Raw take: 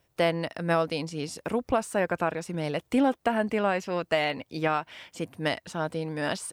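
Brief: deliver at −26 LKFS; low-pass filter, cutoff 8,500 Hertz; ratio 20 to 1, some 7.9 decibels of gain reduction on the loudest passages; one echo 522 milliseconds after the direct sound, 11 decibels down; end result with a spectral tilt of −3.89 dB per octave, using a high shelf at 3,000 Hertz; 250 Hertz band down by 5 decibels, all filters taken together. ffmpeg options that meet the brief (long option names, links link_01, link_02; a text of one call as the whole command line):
ffmpeg -i in.wav -af "lowpass=8500,equalizer=frequency=250:width_type=o:gain=-6.5,highshelf=frequency=3000:gain=6,acompressor=threshold=-27dB:ratio=20,aecho=1:1:522:0.282,volume=7.5dB" out.wav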